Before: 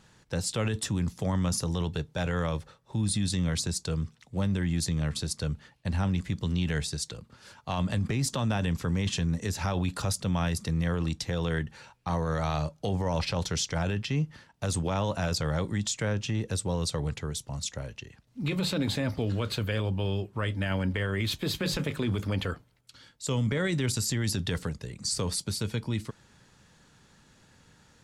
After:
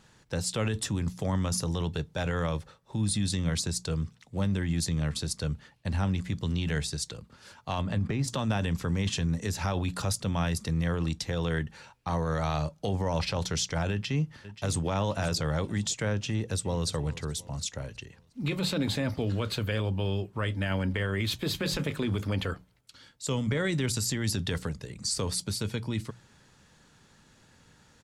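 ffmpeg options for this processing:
ffmpeg -i in.wav -filter_complex "[0:a]asettb=1/sr,asplit=3[link_01][link_02][link_03];[link_01]atrim=end=7.814[link_04];[link_02]atrim=start=7.81:end=8.28,asetpts=PTS-STARTPTS,afade=type=in:duration=0.004:curve=qsin,afade=type=out:start_time=0.466:duration=0.004:curve=qsin,lowpass=frequency=2500:poles=1[link_05];[link_03]atrim=start=8.276[link_06];[link_04][link_05]acrossfade=duration=0.004:curve1=hsin:curve2=qsin[link_07];[link_07][link_06]acrossfade=duration=0.004:curve1=qsin:curve2=hsin,asplit=2[link_08][link_09];[link_09]afade=type=in:start_time=13.91:duration=0.01,afade=type=out:start_time=14.87:duration=0.01,aecho=0:1:530|1060|1590|2120:0.211349|0.0845396|0.0338158|0.0135263[link_10];[link_08][link_10]amix=inputs=2:normalize=0,asplit=2[link_11][link_12];[link_12]afade=type=in:start_time=16.27:duration=0.01,afade=type=out:start_time=16.88:duration=0.01,aecho=0:1:360|720|1080|1440:0.133352|0.0666761|0.033338|0.016669[link_13];[link_11][link_13]amix=inputs=2:normalize=0,bandreject=frequency=60:width_type=h:width=6,bandreject=frequency=120:width_type=h:width=6,bandreject=frequency=180:width_type=h:width=6" out.wav

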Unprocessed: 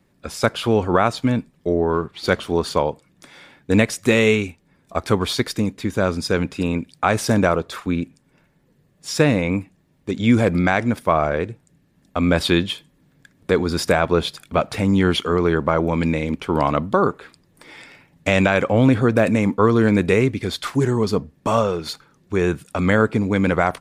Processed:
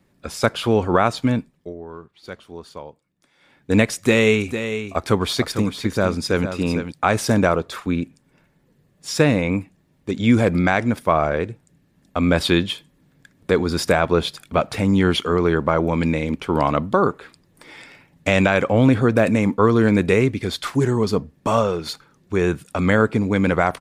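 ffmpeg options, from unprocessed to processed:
ffmpeg -i in.wav -filter_complex "[0:a]asplit=3[link_01][link_02][link_03];[link_01]afade=type=out:start_time=4.4:duration=0.02[link_04];[link_02]aecho=1:1:453:0.335,afade=type=in:start_time=4.4:duration=0.02,afade=type=out:start_time=6.92:duration=0.02[link_05];[link_03]afade=type=in:start_time=6.92:duration=0.02[link_06];[link_04][link_05][link_06]amix=inputs=3:normalize=0,asplit=3[link_07][link_08][link_09];[link_07]atrim=end=1.74,asetpts=PTS-STARTPTS,afade=type=out:start_time=1.34:duration=0.4:silence=0.149624[link_10];[link_08]atrim=start=1.74:end=3.38,asetpts=PTS-STARTPTS,volume=-16.5dB[link_11];[link_09]atrim=start=3.38,asetpts=PTS-STARTPTS,afade=type=in:duration=0.4:silence=0.149624[link_12];[link_10][link_11][link_12]concat=n=3:v=0:a=1" out.wav

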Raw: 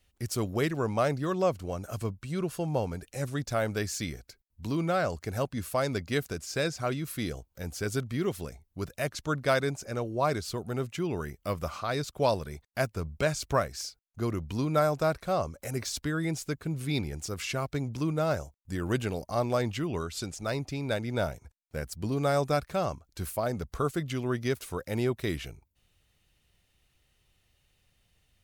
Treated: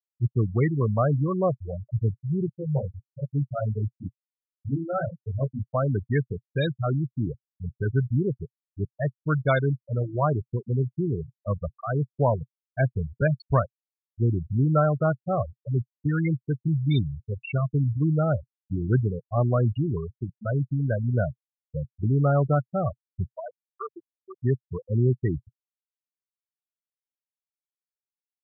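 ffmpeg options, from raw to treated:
ffmpeg -i in.wav -filter_complex "[0:a]asettb=1/sr,asplit=3[link_01][link_02][link_03];[link_01]atrim=end=2.464[link_04];[link_02]atrim=start=2.46:end=5.68,asetpts=PTS-STARTPTS,afade=type=in:duration=0.004:curve=qsin,afade=type=out:start_time=3.216:duration=0.004:curve=qsin,flanger=delay=18:depth=3.8:speed=1.5[link_05];[link_03]atrim=start=5.676[link_06];[link_04][link_05]acrossfade=duration=0.004:curve1=hsin:curve2=qsin[link_07];[link_07][link_06]acrossfade=duration=0.004:curve1=qsin:curve2=hsin,asplit=3[link_08][link_09][link_10];[link_08]afade=type=out:start_time=23.28:duration=0.02[link_11];[link_09]highpass=frequency=1100:poles=1,afade=type=in:start_time=23.28:duration=0.02,afade=type=out:start_time=24.41:duration=0.02[link_12];[link_10]afade=type=in:start_time=24.41:duration=0.02[link_13];[link_11][link_12][link_13]amix=inputs=3:normalize=0,afftfilt=real='re*gte(hypot(re,im),0.1)':imag='im*gte(hypot(re,im),0.1)':win_size=1024:overlap=0.75,equalizer=frequency=125:width_type=o:width=1:gain=11,equalizer=frequency=2000:width_type=o:width=1:gain=4,equalizer=frequency=4000:width_type=o:width=1:gain=7,volume=1.5dB" out.wav

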